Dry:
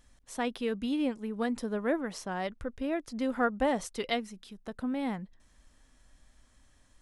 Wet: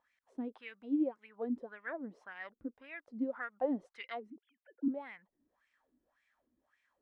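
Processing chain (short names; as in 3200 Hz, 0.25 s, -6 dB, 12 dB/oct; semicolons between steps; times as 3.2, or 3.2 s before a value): 4.3–4.88 sine-wave speech; wah 1.8 Hz 270–2300 Hz, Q 5.1; gain +2 dB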